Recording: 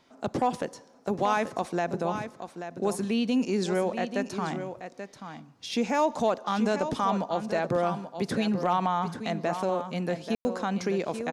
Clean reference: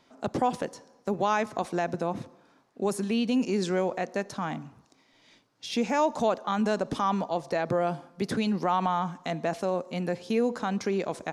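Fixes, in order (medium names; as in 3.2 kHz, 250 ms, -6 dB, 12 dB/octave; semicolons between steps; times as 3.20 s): clip repair -15.5 dBFS; room tone fill 10.35–10.45 s; inverse comb 834 ms -9.5 dB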